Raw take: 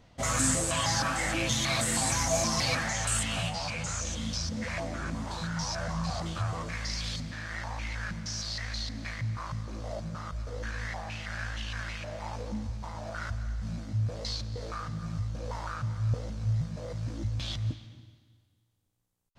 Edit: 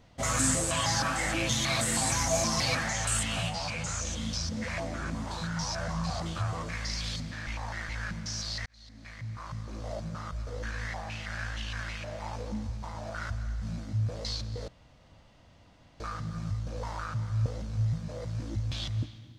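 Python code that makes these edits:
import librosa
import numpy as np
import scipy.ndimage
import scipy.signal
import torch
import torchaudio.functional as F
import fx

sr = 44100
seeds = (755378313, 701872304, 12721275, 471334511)

y = fx.edit(x, sr, fx.reverse_span(start_s=7.47, length_s=0.42),
    fx.fade_in_span(start_s=8.66, length_s=1.22),
    fx.insert_room_tone(at_s=14.68, length_s=1.32), tone=tone)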